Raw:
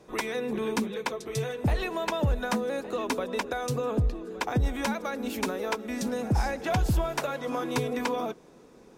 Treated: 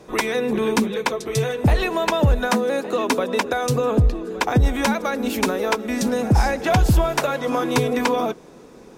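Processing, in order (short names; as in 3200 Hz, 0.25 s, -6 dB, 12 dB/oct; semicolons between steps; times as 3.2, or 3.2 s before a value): 2.47–3.64 HPF 190 Hz -> 70 Hz 12 dB/oct; gain +9 dB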